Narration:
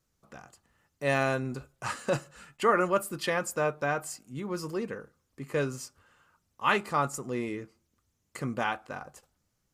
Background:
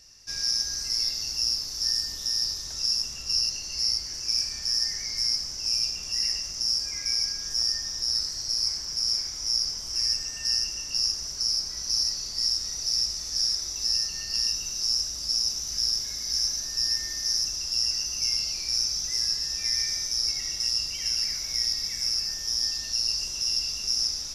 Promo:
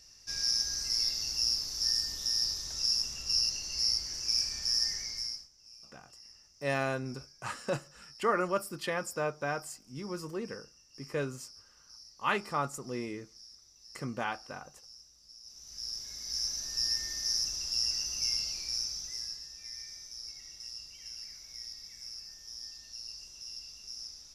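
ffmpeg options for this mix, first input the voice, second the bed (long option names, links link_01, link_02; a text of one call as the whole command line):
ffmpeg -i stem1.wav -i stem2.wav -filter_complex "[0:a]adelay=5600,volume=-4.5dB[link_01];[1:a]volume=19dB,afade=type=out:start_time=4.89:duration=0.6:silence=0.0630957,afade=type=in:start_time=15.42:duration=1.38:silence=0.0749894,afade=type=out:start_time=18.3:duration=1.21:silence=0.237137[link_02];[link_01][link_02]amix=inputs=2:normalize=0" out.wav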